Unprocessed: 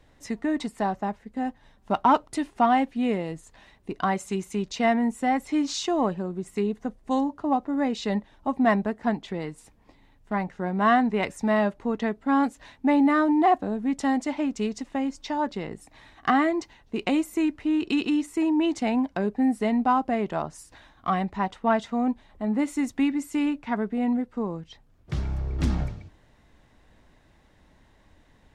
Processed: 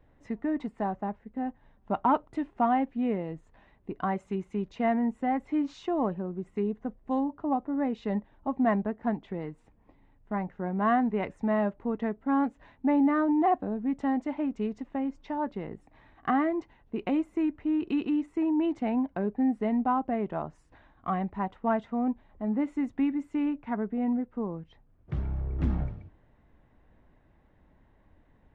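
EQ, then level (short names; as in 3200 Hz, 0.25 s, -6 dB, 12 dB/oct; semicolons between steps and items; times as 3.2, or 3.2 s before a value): tape spacing loss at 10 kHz 28 dB; bell 4800 Hz -7 dB 0.97 oct; -2.5 dB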